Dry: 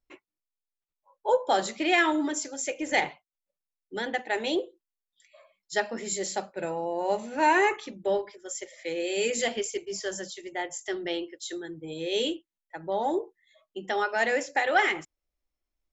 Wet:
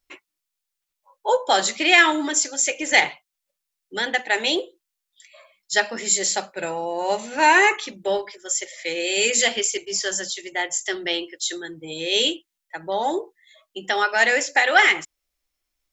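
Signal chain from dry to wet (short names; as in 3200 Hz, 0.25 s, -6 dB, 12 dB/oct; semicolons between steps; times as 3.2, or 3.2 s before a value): tilt shelf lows -6 dB, about 1100 Hz; gain +7 dB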